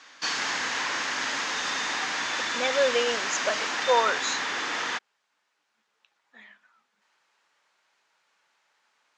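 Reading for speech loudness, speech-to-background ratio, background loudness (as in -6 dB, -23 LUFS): -27.5 LUFS, 0.5 dB, -28.0 LUFS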